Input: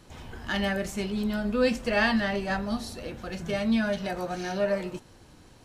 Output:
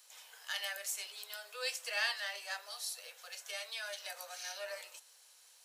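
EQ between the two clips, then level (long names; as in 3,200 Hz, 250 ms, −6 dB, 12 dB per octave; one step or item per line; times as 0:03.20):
Butterworth high-pass 450 Hz 72 dB per octave
first difference
+3.0 dB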